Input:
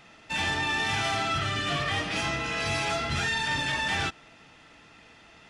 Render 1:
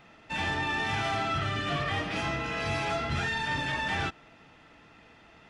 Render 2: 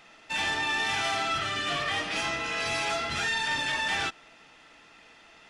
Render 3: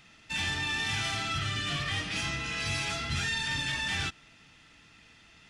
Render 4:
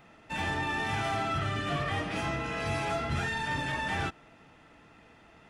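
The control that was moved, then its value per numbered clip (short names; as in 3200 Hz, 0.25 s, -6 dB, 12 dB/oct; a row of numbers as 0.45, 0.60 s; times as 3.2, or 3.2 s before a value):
bell, frequency: 14000, 98, 630, 4900 Hz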